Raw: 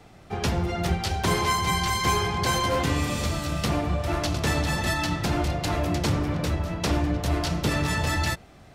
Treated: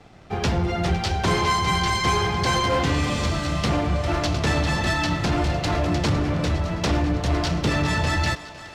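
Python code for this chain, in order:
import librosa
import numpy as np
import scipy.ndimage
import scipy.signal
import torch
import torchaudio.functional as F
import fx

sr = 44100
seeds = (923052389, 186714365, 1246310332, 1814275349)

y = scipy.signal.sosfilt(scipy.signal.butter(2, 6400.0, 'lowpass', fs=sr, output='sos'), x)
y = fx.leveller(y, sr, passes=1)
y = fx.echo_thinned(y, sr, ms=508, feedback_pct=71, hz=420.0, wet_db=-15)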